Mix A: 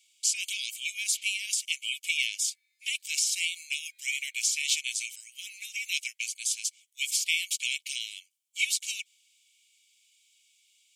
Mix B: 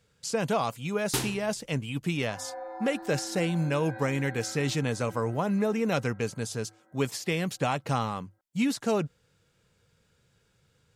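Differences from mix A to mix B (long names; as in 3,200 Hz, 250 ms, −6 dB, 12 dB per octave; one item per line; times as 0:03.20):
speech −12.0 dB
first sound: remove head-to-tape spacing loss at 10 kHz 31 dB
master: remove Chebyshev high-pass with heavy ripple 2,200 Hz, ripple 6 dB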